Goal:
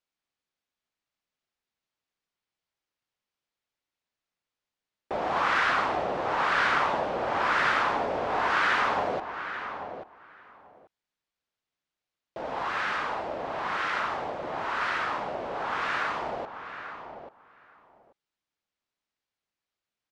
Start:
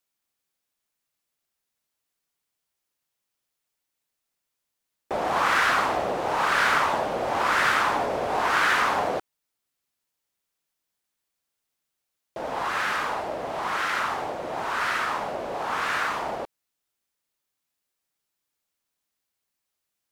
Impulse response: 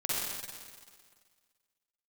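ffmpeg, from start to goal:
-filter_complex "[0:a]lowpass=4600,asplit=2[s0][s1];[s1]adelay=837,lowpass=f=2300:p=1,volume=0.355,asplit=2[s2][s3];[s3]adelay=837,lowpass=f=2300:p=1,volume=0.16[s4];[s0][s2][s4]amix=inputs=3:normalize=0,volume=0.708"

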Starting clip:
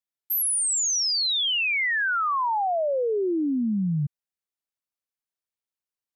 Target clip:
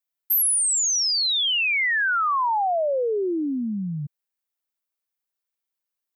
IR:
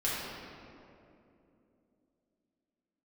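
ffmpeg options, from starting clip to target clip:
-af "lowpass=f=2500:p=1,aemphasis=mode=production:type=bsi,volume=1.41"

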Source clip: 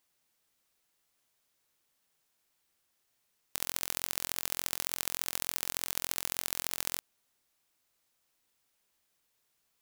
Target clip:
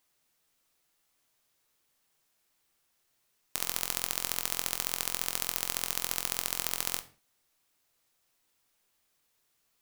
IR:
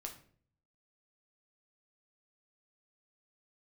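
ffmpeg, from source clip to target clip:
-filter_complex "[0:a]asplit=2[s0][s1];[1:a]atrim=start_sample=2205,afade=t=out:st=0.25:d=0.01,atrim=end_sample=11466[s2];[s1][s2]afir=irnorm=-1:irlink=0,volume=1.58[s3];[s0][s3]amix=inputs=2:normalize=0,volume=0.668"

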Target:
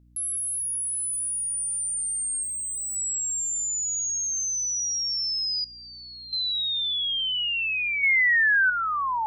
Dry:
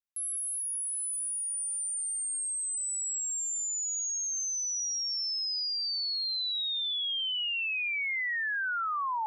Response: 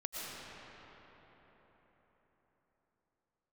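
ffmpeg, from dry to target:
-filter_complex "[0:a]asettb=1/sr,asplit=3[s0][s1][s2];[s0]atrim=end=2.434[s3];[s1]atrim=start=2.43:end=2.96,asetpts=PTS-STARTPTS,afade=t=in:d=0.004:c=qsin,afade=t=out:st=0.526:d=0.004:c=qsin,asoftclip=type=hard:threshold=0.0178[s4];[s2]atrim=start=2.956[s5];[s3][s4]acrossfade=d=0.004:c1=hsin:c2=qsin[s6];[s6][s5]acrossfade=d=0.004:c1=qsin:c2=hsin,asettb=1/sr,asplit=3[s7][s8][s9];[s7]atrim=end=5.644[s10];[s8]atrim=start=5.64:end=6.33,asetpts=PTS-STARTPTS,afade=t=in:d=0.004:c=qsin,afade=t=out:st=0.686:d=0.004:c=qsin,lowpass=1900[s11];[s9]atrim=start=6.326[s12];[s10][s11]acrossfade=d=0.004:c1=hsin:c2=qsin[s13];[s13][s12]acrossfade=d=0.004:c1=qsin:c2=hsin,asettb=1/sr,asplit=3[s14][s15][s16];[s14]atrim=end=8.034[s17];[s15]atrim=start=8.03:end=8.7,asetpts=PTS-STARTPTS,afade=t=in:d=0.004:c=qsin,afade=t=out:st=0.666:d=0.004:c=qsin,acontrast=65[s18];[s16]atrim=start=8.696[s19];[s17][s18]acrossfade=d=0.004:c1=hsin:c2=qsin[s20];[s20][s19]acrossfade=d=0.004:c1=qsin:c2=hsin,aeval=exprs='val(0)+0.001*(sin(2*PI*60*n/s)+sin(2*PI*2*60*n/s)/2+sin(2*PI*3*60*n/s)/3+sin(2*PI*4*60*n/s)/4+sin(2*PI*5*60*n/s)/5)':c=same,volume=1.78"

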